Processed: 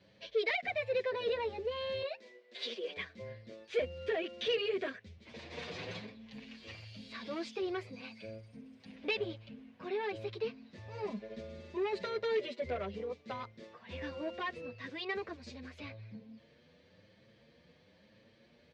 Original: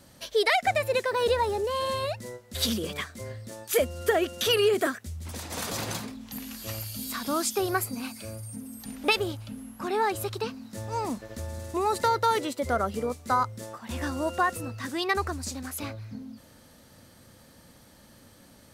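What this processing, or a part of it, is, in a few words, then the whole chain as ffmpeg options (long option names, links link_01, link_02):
barber-pole flanger into a guitar amplifier: -filter_complex "[0:a]asettb=1/sr,asplit=3[link_01][link_02][link_03];[link_01]atrim=end=2.024[link_04];[link_02]atrim=start=2.02:end=2.97,asetpts=PTS-STARTPTS,afade=type=in:duration=0.004:curve=qsin,afade=type=out:start_time=0.946:duration=0.004:curve=qsin,highpass=frequency=330:width=0.5412,highpass=frequency=330:width=1.3066[link_05];[link_03]atrim=start=2.966[link_06];[link_04][link_05]acrossfade=duration=0.004:curve1=hsin:curve2=qsin[link_07];[link_07][link_06]acrossfade=duration=0.004:curve1=qsin:curve2=hsin,asettb=1/sr,asplit=3[link_08][link_09][link_10];[link_08]atrim=end=11.024[link_11];[link_09]atrim=start=11.02:end=12.61,asetpts=PTS-STARTPTS,afade=type=in:duration=0.004:curve=qsin,afade=type=out:start_time=1.586:duration=0.004:curve=qsin,aecho=1:1:4.9:0.77,atrim=end_sample=70119[link_12];[link_10]atrim=start=12.606[link_13];[link_11][link_12]acrossfade=duration=0.004:curve1=hsin:curve2=qsin[link_14];[link_14][link_13]acrossfade=duration=0.004:curve1=qsin:curve2=hsin,asplit=2[link_15][link_16];[link_16]adelay=7.5,afreqshift=1[link_17];[link_15][link_17]amix=inputs=2:normalize=1,asoftclip=type=tanh:threshold=-24.5dB,highpass=97,equalizer=frequency=120:width_type=q:width=4:gain=-4,equalizer=frequency=270:width_type=q:width=4:gain=-7,equalizer=frequency=470:width_type=q:width=4:gain=5,equalizer=frequency=840:width_type=q:width=4:gain=-8,equalizer=frequency=1300:width_type=q:width=4:gain=-10,equalizer=frequency=2300:width_type=q:width=4:gain=5,lowpass=frequency=4100:width=0.5412,lowpass=frequency=4100:width=1.3066,volume=-4dB"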